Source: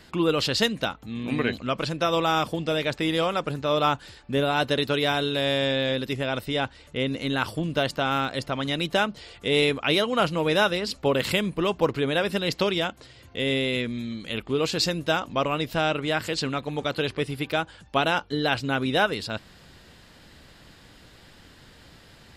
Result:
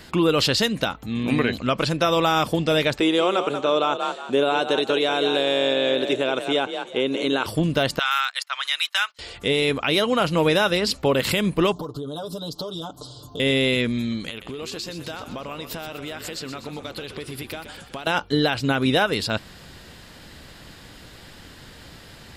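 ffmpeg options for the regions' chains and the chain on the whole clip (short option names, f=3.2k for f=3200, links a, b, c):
-filter_complex "[0:a]asettb=1/sr,asplit=3[a][b][c];[a]atrim=end=3.004[d];[b]atrim=start=3:end=7.46,asetpts=PTS-STARTPTS,afade=t=in:d=0.004:c=qsin,afade=t=out:st=4.456:d=0.004:c=qsin,highpass=300,equalizer=f=370:t=q:w=4:g=7,equalizer=f=1.9k:t=q:w=4:g=-7,equalizer=f=4.7k:t=q:w=4:g=-7,lowpass=f=8.8k:w=0.5412,lowpass=f=8.8k:w=1.3066,bandreject=f=5.1k:w=6.9,asplit=4[e][f][g][h];[f]adelay=182,afreqshift=40,volume=-10dB[i];[g]adelay=364,afreqshift=80,volume=-20.5dB[j];[h]adelay=546,afreqshift=120,volume=-30.9dB[k];[e][i][j][k]amix=inputs=4:normalize=0,atrim=end_sample=196686[l];[c]atrim=start=7.456[m];[d][l]acrossfade=d=0.004:c1=hsin:c2=qsin[n];[n][m]acrossfade=d=0.004:c1=qsin:c2=hsin,asettb=1/sr,asplit=3[o][p][q];[o]atrim=end=7.994[r];[p]atrim=start=7.99:end=9.19,asetpts=PTS-STARTPTS,afade=t=in:d=0.004:c=qsin,afade=t=out:st=1.196:d=0.004:c=qsin,agate=range=-19dB:threshold=-33dB:ratio=16:release=100:detection=peak,highpass=f=1.2k:w=0.5412,highpass=f=1.2k:w=1.3066[s];[q]atrim=start=9.186[t];[r][s]acrossfade=d=0.004:c1=hsin:c2=qsin[u];[u][t]acrossfade=d=0.004:c1=qsin:c2=hsin,asettb=1/sr,asplit=3[v][w][x];[v]atrim=end=11.724[y];[w]atrim=start=11.72:end=13.4,asetpts=PTS-STARTPTS,afade=t=in:d=0.004:c=qsin,afade=t=out:st=1.676:d=0.004:c=qsin,asuperstop=centerf=2100:order=8:qfactor=1,aecho=1:1:6.8:0.98,atrim=end_sample=74088,acompressor=threshold=-35dB:ratio=8:attack=3.2:release=140:knee=1:detection=peak[z];[x]atrim=start=13.396[aa];[y][z]acrossfade=d=0.004:c1=hsin:c2=qsin[ab];[ab][aa]acrossfade=d=0.004:c1=qsin:c2=hsin,asettb=1/sr,asplit=3[ac][ad][ae];[ac]atrim=end=14.294[af];[ad]atrim=start=14.29:end=18.07,asetpts=PTS-STARTPTS,afade=t=in:d=0.004:c=qsin,afade=t=out:st=3.776:d=0.004:c=qsin,bass=f=250:g=-4,treble=f=4k:g=3,acompressor=threshold=-36dB:ratio=12:attack=3.2:release=140:knee=1:detection=peak,asplit=8[ag][ah][ai][aj][ak][al][am][an];[ah]adelay=123,afreqshift=-41,volume=-10dB[ao];[ai]adelay=246,afreqshift=-82,volume=-14.9dB[ap];[aj]adelay=369,afreqshift=-123,volume=-19.8dB[aq];[ak]adelay=492,afreqshift=-164,volume=-24.6dB[ar];[al]adelay=615,afreqshift=-205,volume=-29.5dB[as];[am]adelay=738,afreqshift=-246,volume=-34.4dB[at];[an]adelay=861,afreqshift=-287,volume=-39.3dB[au];[ag][ao][ap][aq][ar][as][at][au]amix=inputs=8:normalize=0,atrim=end_sample=166698[av];[ae]atrim=start=18.066[aw];[af][av]acrossfade=d=0.004:c1=hsin:c2=qsin[ax];[ax][aw]acrossfade=d=0.004:c1=qsin:c2=hsin,highshelf=f=10k:g=5,alimiter=limit=-16.5dB:level=0:latency=1:release=115,volume=6.5dB"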